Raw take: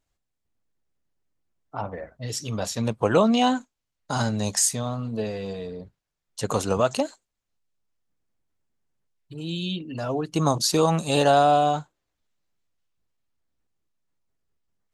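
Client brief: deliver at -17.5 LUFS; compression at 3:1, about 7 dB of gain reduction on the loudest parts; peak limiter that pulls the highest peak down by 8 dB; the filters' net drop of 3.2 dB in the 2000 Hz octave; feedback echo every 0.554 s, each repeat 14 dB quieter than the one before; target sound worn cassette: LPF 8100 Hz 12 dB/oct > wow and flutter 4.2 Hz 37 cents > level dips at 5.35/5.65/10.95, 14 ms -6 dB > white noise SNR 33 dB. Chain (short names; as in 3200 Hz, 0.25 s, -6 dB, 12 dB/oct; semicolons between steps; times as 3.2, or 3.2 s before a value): bell 2000 Hz -5 dB; compressor 3:1, threshold -24 dBFS; limiter -20.5 dBFS; LPF 8100 Hz 12 dB/oct; feedback echo 0.554 s, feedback 20%, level -14 dB; wow and flutter 4.2 Hz 37 cents; level dips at 5.35/5.65/10.95, 14 ms -6 dB; white noise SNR 33 dB; gain +14.5 dB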